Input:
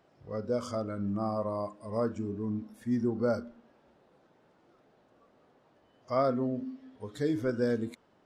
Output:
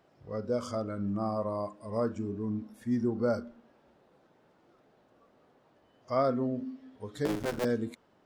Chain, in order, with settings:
0:07.25–0:07.65: sub-harmonics by changed cycles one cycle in 3, muted

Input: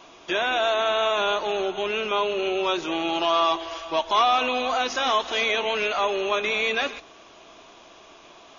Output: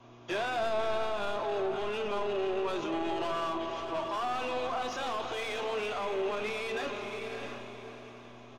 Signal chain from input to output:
soft clipping −25 dBFS, distortion −9 dB
convolution reverb RT60 0.35 s, pre-delay 7 ms, DRR 14 dB
hum with harmonics 120 Hz, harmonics 3, −52 dBFS −1 dB per octave
double-tracking delay 34 ms −13.5 dB
feedback delay with all-pass diffusion 626 ms, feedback 43%, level −9 dB
brickwall limiter −27.5 dBFS, peak gain reduction 10 dB
high-shelf EQ 2,300 Hz −10 dB
multiband upward and downward expander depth 70%
level +3 dB

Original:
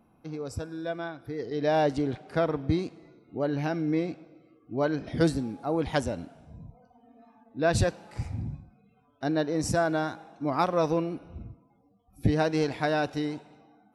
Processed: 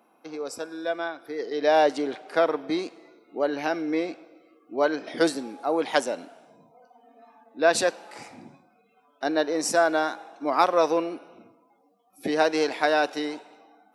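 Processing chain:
Bessel high-pass filter 440 Hz, order 4
level +6.5 dB

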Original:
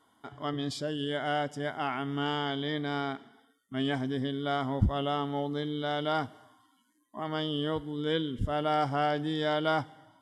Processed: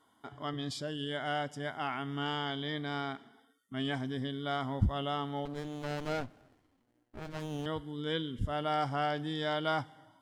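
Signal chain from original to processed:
dynamic equaliser 400 Hz, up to −4 dB, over −42 dBFS, Q 0.76
0:05.45–0:07.66: windowed peak hold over 33 samples
level −2 dB

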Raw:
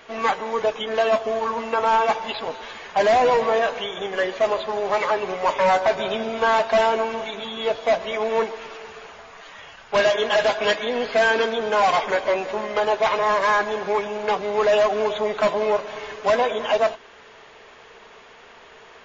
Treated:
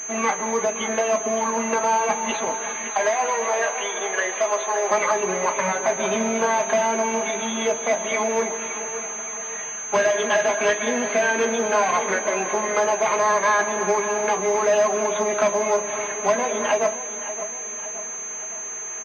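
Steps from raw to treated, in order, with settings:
0:02.89–0:04.91: high-pass filter 560 Hz 12 dB per octave
downward compressor, threshold −22 dBFS, peak gain reduction 7.5 dB
repeating echo 567 ms, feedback 50%, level −12.5 dB
convolution reverb, pre-delay 3 ms, DRR 5 dB
switching amplifier with a slow clock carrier 6,300 Hz
level +4.5 dB

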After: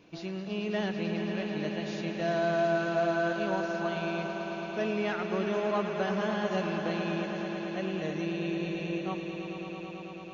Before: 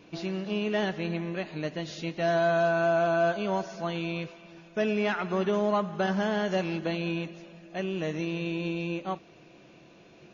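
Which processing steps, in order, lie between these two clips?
echo that builds up and dies away 110 ms, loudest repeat 5, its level −10.5 dB
level −4.5 dB

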